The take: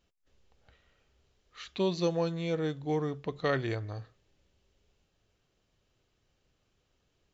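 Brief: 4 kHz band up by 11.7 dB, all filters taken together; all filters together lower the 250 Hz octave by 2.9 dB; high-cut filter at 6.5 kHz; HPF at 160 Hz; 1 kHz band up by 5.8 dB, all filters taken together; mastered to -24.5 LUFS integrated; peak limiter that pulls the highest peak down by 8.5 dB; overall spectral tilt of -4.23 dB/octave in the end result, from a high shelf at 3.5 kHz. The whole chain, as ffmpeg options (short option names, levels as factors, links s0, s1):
-af "highpass=160,lowpass=6500,equalizer=f=250:t=o:g=-4,equalizer=f=1000:t=o:g=6.5,highshelf=f=3500:g=8.5,equalizer=f=4000:t=o:g=8.5,volume=2.66,alimiter=limit=0.299:level=0:latency=1"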